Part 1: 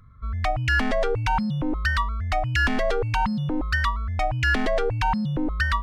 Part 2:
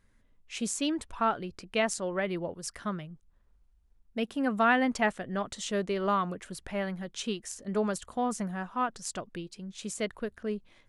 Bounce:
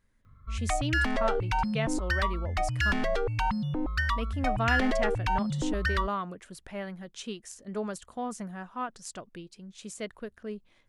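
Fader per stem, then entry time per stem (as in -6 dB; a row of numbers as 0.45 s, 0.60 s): -5.0 dB, -4.5 dB; 0.25 s, 0.00 s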